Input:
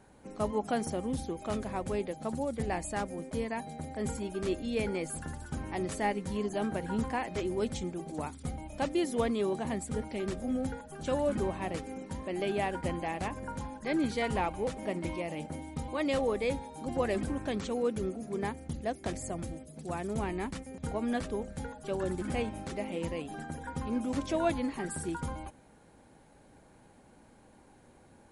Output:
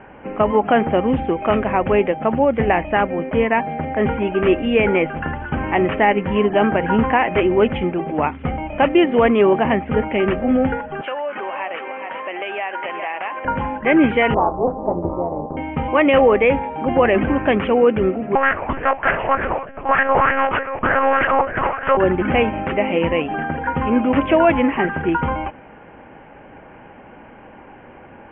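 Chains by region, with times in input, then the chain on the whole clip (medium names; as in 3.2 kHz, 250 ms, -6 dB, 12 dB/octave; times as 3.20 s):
11.01–13.45 s: high-pass 700 Hz + delay 409 ms -12.5 dB + compression 4:1, threshold -42 dBFS
14.34–15.57 s: steep low-pass 970 Hz + AM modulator 250 Hz, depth 80% + doubling 34 ms -12.5 dB
18.35–21.97 s: comb filter that takes the minimum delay 1.7 ms + monotone LPC vocoder at 8 kHz 270 Hz + sweeping bell 3.3 Hz 840–1700 Hz +16 dB
whole clip: steep low-pass 3 kHz 96 dB/octave; bass shelf 320 Hz -9.5 dB; loudness maximiser +25 dB; trim -4 dB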